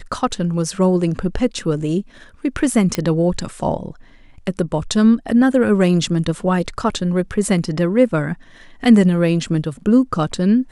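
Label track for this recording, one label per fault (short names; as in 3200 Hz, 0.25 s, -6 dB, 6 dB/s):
2.950000	2.950000	pop -5 dBFS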